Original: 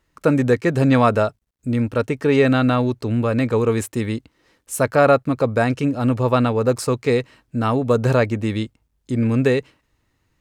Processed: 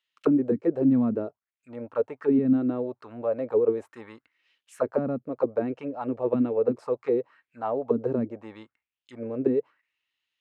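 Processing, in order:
0:05.60–0:06.84: dynamic equaliser 2,500 Hz, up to +7 dB, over −39 dBFS, Q 1.3
envelope filter 220–3,200 Hz, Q 3.8, down, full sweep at −11.5 dBFS

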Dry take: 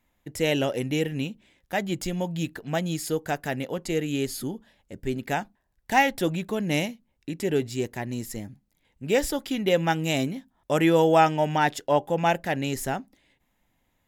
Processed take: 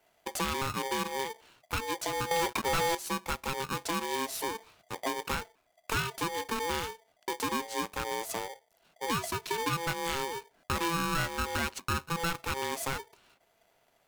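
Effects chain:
0:02.31–0:02.95: leveller curve on the samples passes 5
downward compressor 4 to 1, threshold −32 dBFS, peak gain reduction 15.5 dB
ring modulator with a square carrier 670 Hz
level +1.5 dB

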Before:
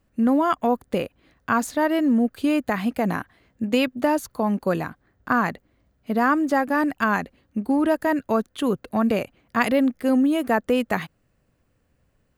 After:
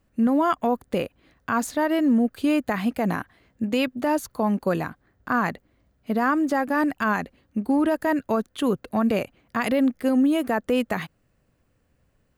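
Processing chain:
brickwall limiter −13.5 dBFS, peak gain reduction 7.5 dB

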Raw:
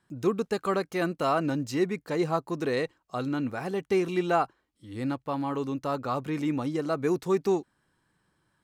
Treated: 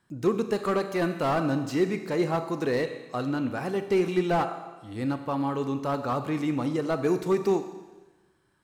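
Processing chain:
four-comb reverb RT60 1.2 s, combs from 29 ms, DRR 9 dB
slew-rate limiting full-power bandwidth 61 Hz
level +1.5 dB

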